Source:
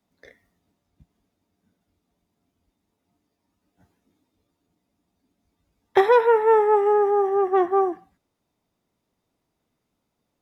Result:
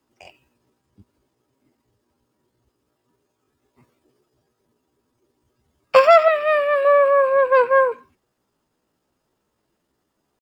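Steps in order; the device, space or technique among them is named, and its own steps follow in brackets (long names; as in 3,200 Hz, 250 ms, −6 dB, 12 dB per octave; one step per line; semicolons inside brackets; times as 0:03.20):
chipmunk voice (pitch shifter +5.5 semitones)
0:06.28–0:06.85: flat-topped bell 880 Hz −8 dB 1.3 octaves
level +4.5 dB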